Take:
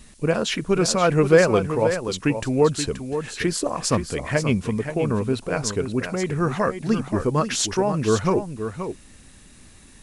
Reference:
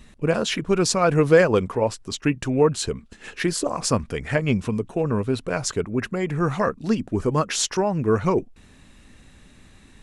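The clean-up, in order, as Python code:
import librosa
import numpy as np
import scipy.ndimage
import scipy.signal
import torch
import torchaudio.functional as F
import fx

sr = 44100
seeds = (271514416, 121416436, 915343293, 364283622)

y = fx.noise_reduce(x, sr, print_start_s=9.49, print_end_s=9.99, reduce_db=6.0)
y = fx.fix_echo_inverse(y, sr, delay_ms=528, level_db=-9.0)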